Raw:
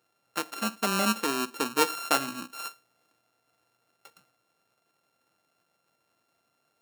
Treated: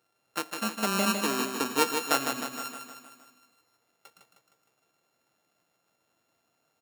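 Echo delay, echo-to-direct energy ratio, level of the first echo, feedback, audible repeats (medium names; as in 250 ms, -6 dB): 155 ms, -4.5 dB, -6.0 dB, 57%, 6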